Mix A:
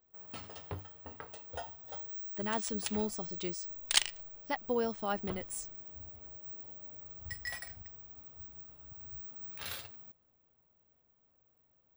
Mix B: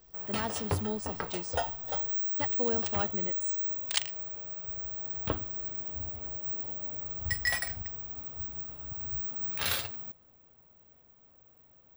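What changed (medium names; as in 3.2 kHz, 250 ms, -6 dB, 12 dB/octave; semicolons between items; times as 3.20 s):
speech: entry -2.10 s; first sound +11.0 dB; second sound -3.0 dB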